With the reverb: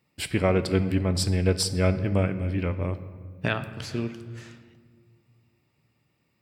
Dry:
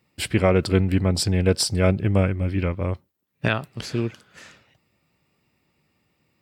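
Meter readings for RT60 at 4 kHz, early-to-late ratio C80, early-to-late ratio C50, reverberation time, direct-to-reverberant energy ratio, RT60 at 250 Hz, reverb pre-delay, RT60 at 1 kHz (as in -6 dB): 1.0 s, 14.0 dB, 13.0 dB, 1.7 s, 10.5 dB, 2.6 s, 3 ms, 1.5 s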